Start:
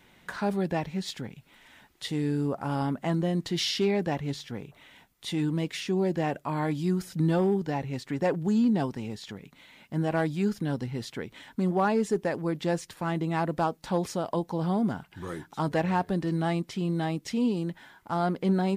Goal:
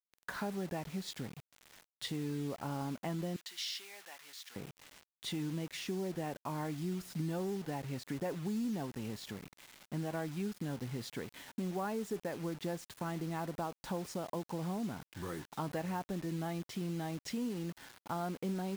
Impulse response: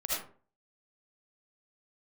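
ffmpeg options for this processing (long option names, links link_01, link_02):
-filter_complex "[0:a]acompressor=threshold=-34dB:ratio=3,adynamicequalizer=threshold=0.00251:dfrequency=2900:dqfactor=0.72:tfrequency=2900:tqfactor=0.72:attack=5:release=100:ratio=0.375:range=1.5:mode=cutabove:tftype=bell,acrusher=bits=7:mix=0:aa=0.000001,asettb=1/sr,asplit=3[link_01][link_02][link_03];[link_01]atrim=end=3.364[link_04];[link_02]atrim=start=3.36:end=4.56,asetpts=PTS-STARTPTS,afade=type=in:duration=0.004:curve=qsin,afade=type=out:start_time=1.196:duration=0.004:curve=qsin,highpass=1400[link_05];[link_03]atrim=start=4.556[link_06];[link_04][link_05]acrossfade=duration=0.004:curve1=hsin:curve2=qsin[link_07];[link_07][link_06]acrossfade=duration=0.004:curve1=qsin:curve2=hsin,volume=-3dB"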